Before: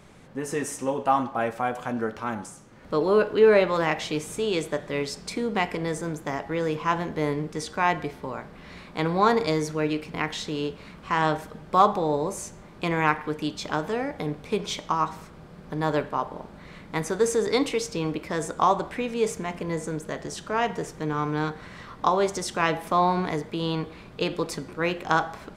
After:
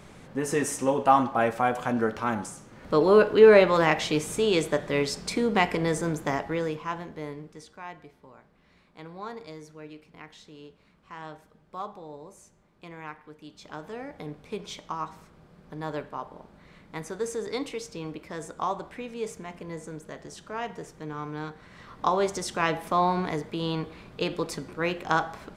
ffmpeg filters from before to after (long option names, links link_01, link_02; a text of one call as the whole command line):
ffmpeg -i in.wav -af "volume=18.5dB,afade=type=out:start_time=6.3:duration=0.52:silence=0.316228,afade=type=out:start_time=6.82:duration=1:silence=0.298538,afade=type=in:start_time=13.43:duration=0.73:silence=0.334965,afade=type=in:start_time=21.67:duration=0.46:silence=0.473151" out.wav